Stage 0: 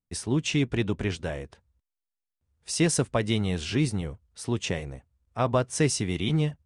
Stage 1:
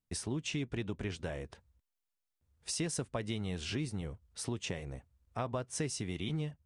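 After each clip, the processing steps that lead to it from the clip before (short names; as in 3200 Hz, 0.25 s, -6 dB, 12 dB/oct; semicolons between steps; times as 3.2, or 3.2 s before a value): compressor 3:1, threshold -37 dBFS, peak gain reduction 14 dB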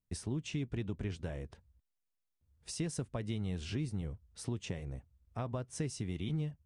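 low shelf 300 Hz +9 dB; gain -6 dB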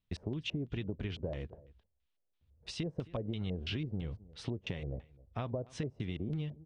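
echo 0.265 s -23.5 dB; LFO low-pass square 3 Hz 570–3400 Hz; compressor, threshold -36 dBFS, peak gain reduction 6.5 dB; gain +3 dB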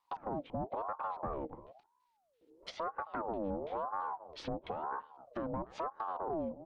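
soft clip -36 dBFS, distortion -11 dB; treble ducked by the level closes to 820 Hz, closed at -39.5 dBFS; ring modulator with a swept carrier 690 Hz, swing 45%, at 1 Hz; gain +6.5 dB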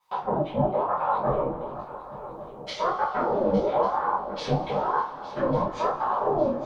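swung echo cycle 1.146 s, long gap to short 3:1, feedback 46%, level -15 dB; reverb, pre-delay 3 ms, DRR -9 dB; detuned doubles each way 57 cents; gain +7 dB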